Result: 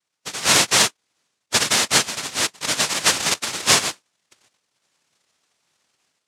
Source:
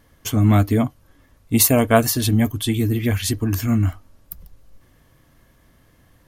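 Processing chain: spectral noise reduction 19 dB; level rider gain up to 10 dB; noise-vocoded speech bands 1; trim -2 dB

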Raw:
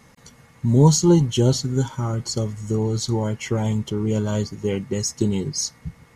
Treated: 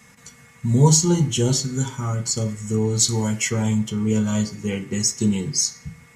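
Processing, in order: 2.99–3.50 s: treble shelf 3.8 kHz +8.5 dB; reverberation RT60 0.45 s, pre-delay 3 ms, DRR 5.5 dB; trim +2.5 dB

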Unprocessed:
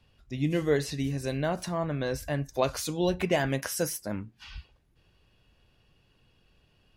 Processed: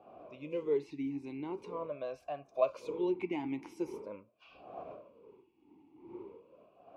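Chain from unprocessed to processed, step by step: wind noise 390 Hz -42 dBFS; talking filter a-u 0.43 Hz; trim +2 dB

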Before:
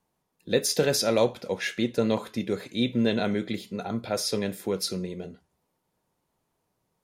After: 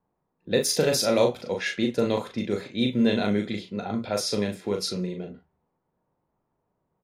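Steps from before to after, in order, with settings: doubling 39 ms -4.5 dB; level-controlled noise filter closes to 1.3 kHz, open at -21.5 dBFS

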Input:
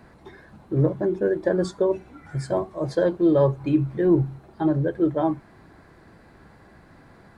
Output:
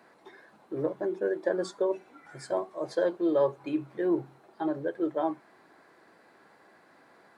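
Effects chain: high-pass 380 Hz 12 dB/octave; trim -4 dB

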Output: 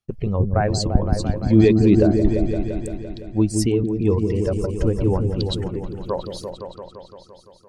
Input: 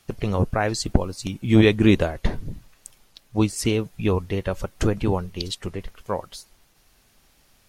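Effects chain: spectral contrast enhancement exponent 1.6; gate -50 dBFS, range -27 dB; delay with an opening low-pass 171 ms, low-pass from 400 Hz, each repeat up 1 oct, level -3 dB; trim +1.5 dB

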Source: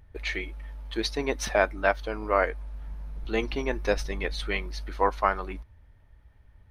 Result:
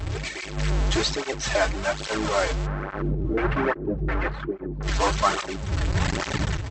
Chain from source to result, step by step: one-bit delta coder 64 kbps, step -19.5 dBFS; level rider gain up to 11 dB; 2.66–4.83 s: LFO low-pass square 1.4 Hz 340–1500 Hz; brick-wall FIR low-pass 8.1 kHz; comb of notches 240 Hz; echo from a far wall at 160 m, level -22 dB; random-step tremolo; cancelling through-zero flanger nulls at 1.2 Hz, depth 5.7 ms

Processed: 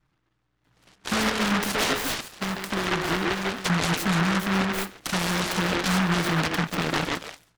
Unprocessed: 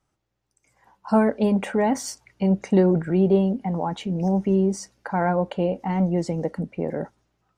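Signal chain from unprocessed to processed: tracing distortion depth 0.061 ms; compression 6:1, threshold -24 dBFS, peak gain reduction 11 dB; 1.70–3.70 s: tone controls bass -13 dB, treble -3 dB; repeats whose band climbs or falls 140 ms, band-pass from 360 Hz, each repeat 1.4 oct, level 0 dB; level-controlled noise filter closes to 600 Hz, open at -26 dBFS; peaking EQ 530 Hz -3 dB; comb 6.4 ms, depth 39%; peak limiter -21.5 dBFS, peak gain reduction 6.5 dB; delay time shaken by noise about 1.2 kHz, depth 0.46 ms; trim +5.5 dB

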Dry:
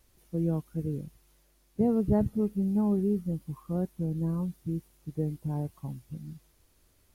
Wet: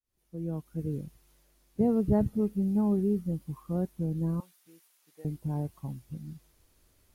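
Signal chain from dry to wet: fade-in on the opening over 0.96 s; 4.40–5.25 s: high-pass 1.1 kHz 12 dB/octave

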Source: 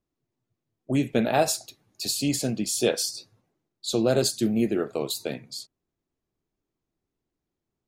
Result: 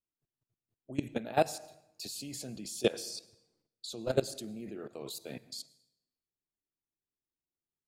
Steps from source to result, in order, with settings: level held to a coarse grid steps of 20 dB; on a send: reverberation RT60 0.85 s, pre-delay 92 ms, DRR 20.5 dB; on the sum: trim -2 dB

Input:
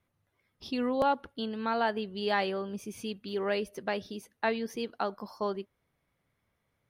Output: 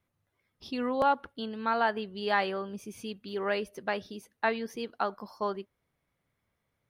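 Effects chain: dynamic bell 1.3 kHz, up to +6 dB, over -41 dBFS, Q 0.78; trim -2 dB

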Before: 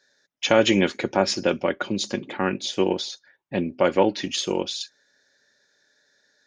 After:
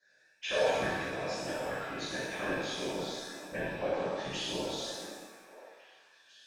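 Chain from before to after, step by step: compression, threshold -29 dBFS, peak gain reduction 16 dB; chord resonator F#3 major, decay 0.47 s; small resonant body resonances 1.7/2.4 kHz, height 14 dB, ringing for 45 ms; whisper effect; on a send: repeats whose band climbs or falls 488 ms, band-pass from 250 Hz, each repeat 1.4 oct, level -9 dB; on the sum: pitch-shifted reverb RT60 1.1 s, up +7 st, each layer -8 dB, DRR -5.5 dB; trim +7 dB

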